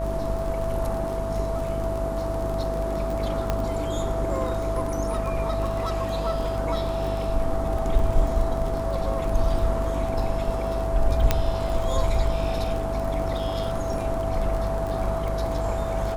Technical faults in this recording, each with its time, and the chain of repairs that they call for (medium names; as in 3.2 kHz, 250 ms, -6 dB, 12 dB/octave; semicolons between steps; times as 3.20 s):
buzz 50 Hz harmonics 28 -30 dBFS
crackle 33 per s -29 dBFS
whine 660 Hz -28 dBFS
3.50 s: pop -11 dBFS
11.31 s: pop -5 dBFS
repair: de-click; de-hum 50 Hz, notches 28; band-stop 660 Hz, Q 30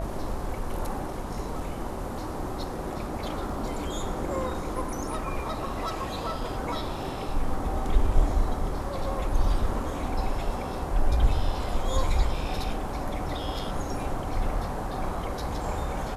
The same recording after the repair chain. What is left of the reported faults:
3.50 s: pop